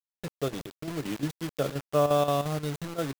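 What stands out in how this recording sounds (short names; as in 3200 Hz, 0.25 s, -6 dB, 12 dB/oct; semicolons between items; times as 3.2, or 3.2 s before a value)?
a quantiser's noise floor 6-bit, dither none; chopped level 5.7 Hz, depth 60%, duty 75%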